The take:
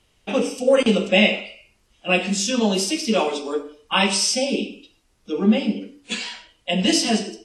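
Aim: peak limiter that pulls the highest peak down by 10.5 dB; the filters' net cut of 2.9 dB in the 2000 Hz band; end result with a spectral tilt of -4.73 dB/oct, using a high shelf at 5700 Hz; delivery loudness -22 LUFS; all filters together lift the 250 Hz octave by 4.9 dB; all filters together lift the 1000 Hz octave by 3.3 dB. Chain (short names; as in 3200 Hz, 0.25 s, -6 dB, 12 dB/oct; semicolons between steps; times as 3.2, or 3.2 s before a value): bell 250 Hz +6 dB; bell 1000 Hz +5 dB; bell 2000 Hz -3.5 dB; high shelf 5700 Hz -8.5 dB; gain +0.5 dB; limiter -11.5 dBFS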